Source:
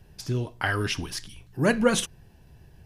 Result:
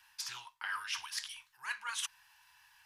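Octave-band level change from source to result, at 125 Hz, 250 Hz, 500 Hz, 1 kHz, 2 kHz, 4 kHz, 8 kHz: under -40 dB, under -40 dB, under -40 dB, -11.0 dB, -9.5 dB, -6.5 dB, -7.5 dB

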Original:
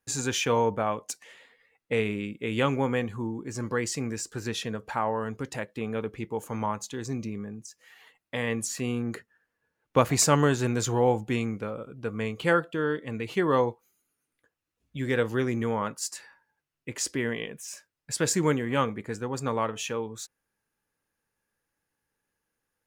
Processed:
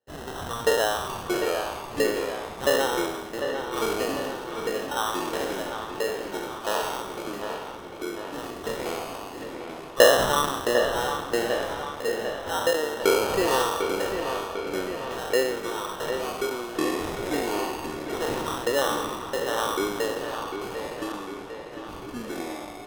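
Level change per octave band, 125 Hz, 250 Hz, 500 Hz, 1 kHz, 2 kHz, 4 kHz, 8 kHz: -10.0, -2.0, +4.5, +4.0, +4.0, +6.5, -1.5 dB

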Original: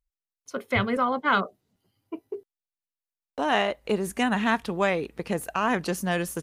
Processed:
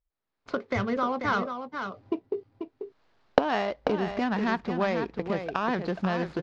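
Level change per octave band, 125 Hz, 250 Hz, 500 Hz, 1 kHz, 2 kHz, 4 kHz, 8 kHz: -1.0 dB, -1.0 dB, -0.5 dB, -2.5 dB, -4.5 dB, -6.0 dB, under -15 dB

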